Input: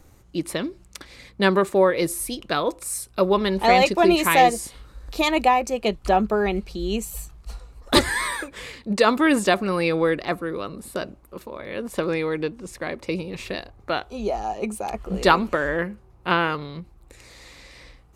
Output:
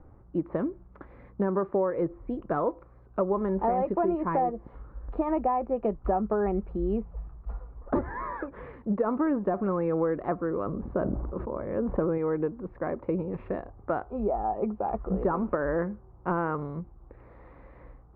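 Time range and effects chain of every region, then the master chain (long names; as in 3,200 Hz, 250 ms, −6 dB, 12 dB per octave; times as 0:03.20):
0:10.66–0:12.18: spectral tilt −1.5 dB per octave + level that may fall only so fast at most 34 dB per second
whole clip: de-essing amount 80%; low-pass filter 1,300 Hz 24 dB per octave; downward compressor, threshold −23 dBFS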